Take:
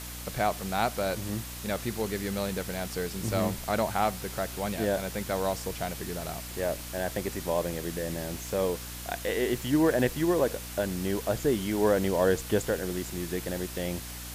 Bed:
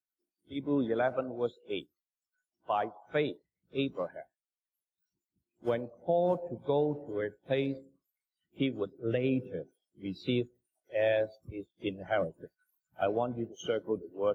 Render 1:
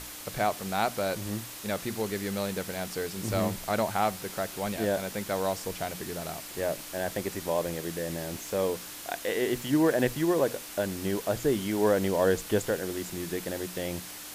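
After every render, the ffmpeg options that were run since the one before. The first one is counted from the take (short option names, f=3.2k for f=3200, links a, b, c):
-af "bandreject=f=60:t=h:w=6,bandreject=f=120:t=h:w=6,bandreject=f=180:t=h:w=6,bandreject=f=240:t=h:w=6"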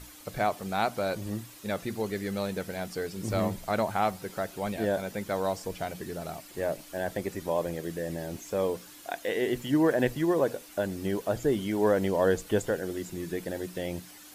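-af "afftdn=nr=10:nf=-42"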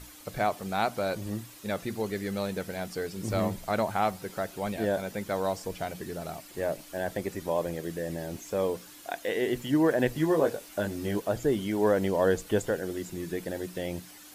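-filter_complex "[0:a]asettb=1/sr,asplit=3[a][b][c];[a]atrim=end=10.134[d];[b]atrim=start=10.13:end=11.2,asetpts=PTS-STARTPTS,afade=t=in:d=0.004:c=qsin,afade=t=out:st=1.066:d=0.004:c=qsin,asplit=2[e][f];[f]adelay=19,volume=-4.5dB[g];[e][g]amix=inputs=2:normalize=0,atrim=end_sample=47187[h];[c]atrim=start=11.196[i];[d][h]acrossfade=d=0.004:c1=hsin:c2=qsin[j];[j][i]acrossfade=d=0.004:c1=qsin:c2=hsin"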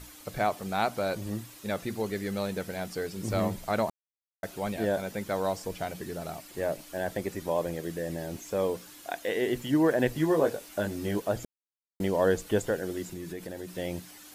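-filter_complex "[0:a]asettb=1/sr,asplit=3[a][b][c];[a]atrim=end=13.124[d];[b]atrim=start=13.12:end=13.78,asetpts=PTS-STARTPTS,afade=t=in:d=0.004:c=qsin,afade=t=out:st=0.656:d=0.004:c=qsin,acompressor=threshold=-35dB:ratio=3:attack=3.2:release=140:knee=1:detection=peak[e];[c]atrim=start=13.776[f];[d][e]acrossfade=d=0.004:c1=hsin:c2=qsin[g];[g][f]acrossfade=d=0.004:c1=qsin:c2=hsin,asplit=5[h][i][j][k][l];[h]atrim=end=3.9,asetpts=PTS-STARTPTS,afade=t=out:st=3.896:d=0.004:c=hsin[m];[i]atrim=start=3.9:end=4.43,asetpts=PTS-STARTPTS,volume=0[n];[j]atrim=start=4.43:end=11.45,asetpts=PTS-STARTPTS,afade=t=in:d=0.004:c=hsin,afade=t=out:st=7.016:d=0.004:c=hsin[o];[k]atrim=start=11.45:end=12,asetpts=PTS-STARTPTS,volume=0[p];[l]atrim=start=12,asetpts=PTS-STARTPTS,afade=t=in:d=0.004:c=hsin[q];[m][n][o][p][q]concat=n=5:v=0:a=1"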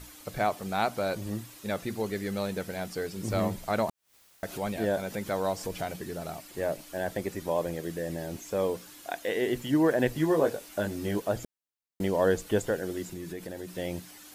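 -filter_complex "[0:a]asettb=1/sr,asplit=3[a][b][c];[a]atrim=end=3.894[d];[b]atrim=start=3.89:end=5.96,asetpts=PTS-STARTPTS,afade=t=in:d=0.004:c=qsin,afade=t=out:st=2.066:d=0.004:c=qsin,acompressor=mode=upward:threshold=-31dB:ratio=2.5:attack=3.2:release=140:knee=2.83:detection=peak[e];[c]atrim=start=5.956[f];[d][e]acrossfade=d=0.004:c1=hsin:c2=qsin[g];[g][f]acrossfade=d=0.004:c1=qsin:c2=hsin"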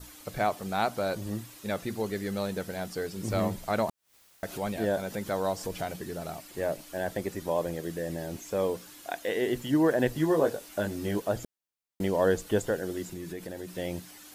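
-af "adynamicequalizer=threshold=0.002:dfrequency=2300:dqfactor=3.9:tfrequency=2300:tqfactor=3.9:attack=5:release=100:ratio=0.375:range=2:mode=cutabove:tftype=bell"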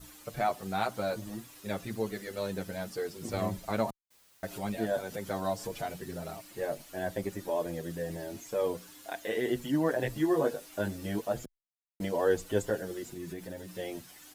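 -filter_complex "[0:a]acrusher=bits=9:mix=0:aa=0.000001,asplit=2[a][b];[b]adelay=7.2,afreqshift=1.1[c];[a][c]amix=inputs=2:normalize=1"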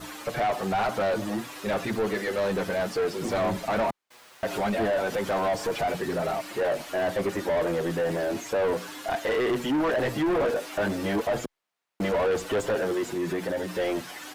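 -filter_complex "[0:a]asplit=2[a][b];[b]highpass=f=720:p=1,volume=29dB,asoftclip=type=tanh:threshold=-15dB[c];[a][c]amix=inputs=2:normalize=0,lowpass=f=1.3k:p=1,volume=-6dB,asoftclip=type=tanh:threshold=-19dB"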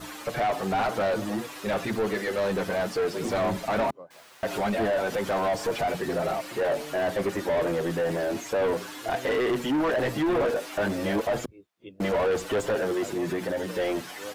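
-filter_complex "[1:a]volume=-10.5dB[a];[0:a][a]amix=inputs=2:normalize=0"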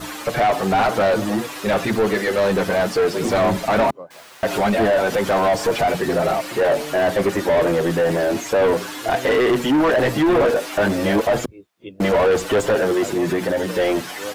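-af "volume=8.5dB"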